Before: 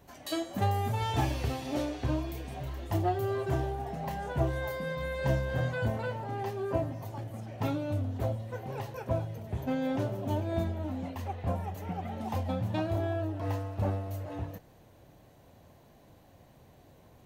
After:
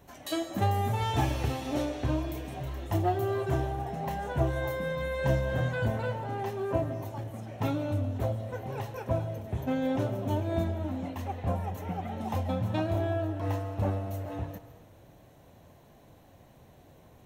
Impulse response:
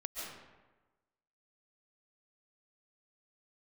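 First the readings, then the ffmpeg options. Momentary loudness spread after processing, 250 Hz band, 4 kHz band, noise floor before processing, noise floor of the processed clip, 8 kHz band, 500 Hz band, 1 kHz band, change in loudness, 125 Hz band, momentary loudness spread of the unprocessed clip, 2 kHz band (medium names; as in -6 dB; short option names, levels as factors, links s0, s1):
8 LU, +1.5 dB, +1.0 dB, -58 dBFS, -56 dBFS, +1.5 dB, +2.0 dB, +2.0 dB, +1.5 dB, +1.5 dB, 8 LU, +1.5 dB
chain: -filter_complex "[0:a]bandreject=f=4700:w=9.7,asplit=2[s0][s1];[1:a]atrim=start_sample=2205[s2];[s1][s2]afir=irnorm=-1:irlink=0,volume=0.299[s3];[s0][s3]amix=inputs=2:normalize=0"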